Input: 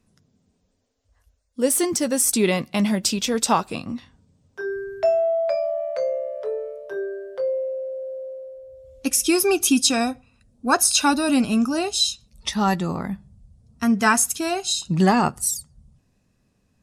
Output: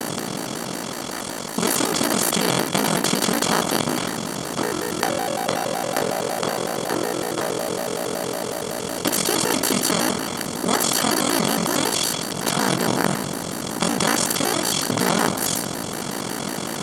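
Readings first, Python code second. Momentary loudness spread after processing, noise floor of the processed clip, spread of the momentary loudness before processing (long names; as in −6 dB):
8 LU, −29 dBFS, 14 LU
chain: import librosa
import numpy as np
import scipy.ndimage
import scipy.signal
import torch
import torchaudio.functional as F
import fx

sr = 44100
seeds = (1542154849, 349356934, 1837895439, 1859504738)

y = fx.bin_compress(x, sr, power=0.2)
y = y * np.sin(2.0 * np.pi * 25.0 * np.arange(len(y)) / sr)
y = fx.vibrato_shape(y, sr, shape='square', rate_hz=5.4, depth_cents=250.0)
y = y * 10.0 ** (-7.5 / 20.0)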